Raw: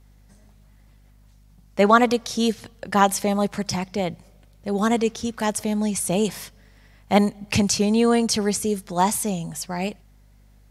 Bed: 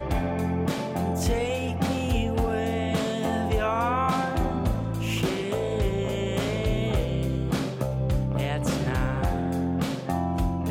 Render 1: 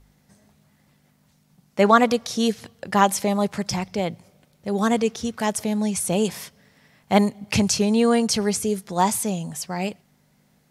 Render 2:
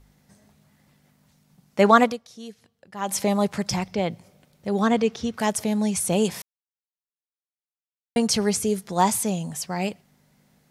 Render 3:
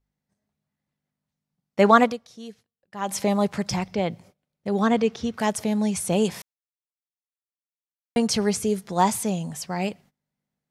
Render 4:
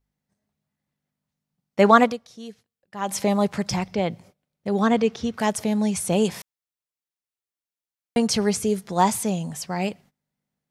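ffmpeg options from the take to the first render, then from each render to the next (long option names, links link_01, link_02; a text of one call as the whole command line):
ffmpeg -i in.wav -af "bandreject=frequency=50:width_type=h:width=4,bandreject=frequency=100:width_type=h:width=4" out.wav
ffmpeg -i in.wav -filter_complex "[0:a]asettb=1/sr,asplit=3[link_01][link_02][link_03];[link_01]atrim=end=3.854[link_04];[link_02]atrim=start=3.85:end=5.38,asetpts=PTS-STARTPTS,afade=type=in:duration=0.004:curve=qsin,afade=type=out:start_time=1.526:duration=0.004:curve=qsin,acrossover=split=5500[link_05][link_06];[link_06]acompressor=threshold=-54dB:ratio=4:attack=1:release=60[link_07];[link_05][link_07]amix=inputs=2:normalize=0[link_08];[link_03]atrim=start=5.376[link_09];[link_04][link_08]acrossfade=duration=0.004:curve1=hsin:curve2=qsin[link_10];[link_10][link_09]acrossfade=duration=0.004:curve1=qsin:curve2=hsin,asplit=5[link_11][link_12][link_13][link_14][link_15];[link_11]atrim=end=2.24,asetpts=PTS-STARTPTS,afade=type=out:start_time=2.03:duration=0.21:curve=qua:silence=0.125893[link_16];[link_12]atrim=start=2.24:end=2.95,asetpts=PTS-STARTPTS,volume=-18dB[link_17];[link_13]atrim=start=2.95:end=6.42,asetpts=PTS-STARTPTS,afade=type=in:duration=0.21:curve=qua:silence=0.125893,afade=type=out:start_time=3.466:duration=0.004:curve=hsin[link_18];[link_14]atrim=start=6.42:end=8.16,asetpts=PTS-STARTPTS,volume=0[link_19];[link_15]atrim=start=8.16,asetpts=PTS-STARTPTS,afade=type=in:duration=0.004:curve=hsin[link_20];[link_16][link_17][link_18][link_19][link_20]concat=n=5:v=0:a=1" out.wav
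ffmpeg -i in.wav -af "agate=range=-23dB:threshold=-49dB:ratio=16:detection=peak,highshelf=frequency=6200:gain=-5.5" out.wav
ffmpeg -i in.wav -af "volume=1dB" out.wav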